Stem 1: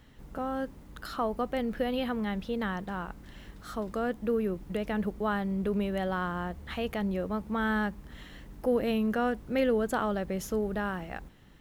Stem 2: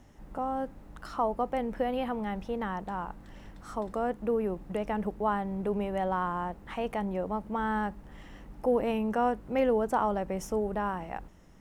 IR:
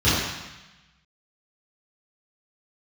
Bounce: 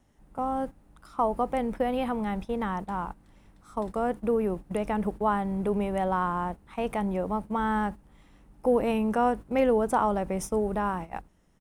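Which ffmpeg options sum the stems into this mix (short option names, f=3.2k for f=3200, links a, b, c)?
-filter_complex "[0:a]volume=-7.5dB[a];[1:a]adelay=1.1,volume=3dB,asplit=2[b][c];[c]apad=whole_len=511628[d];[a][d]sidechaincompress=threshold=-33dB:ratio=8:attack=16:release=103[e];[e][b]amix=inputs=2:normalize=0,equalizer=f=9.4k:w=3:g=9,agate=range=-12dB:threshold=-34dB:ratio=16:detection=peak"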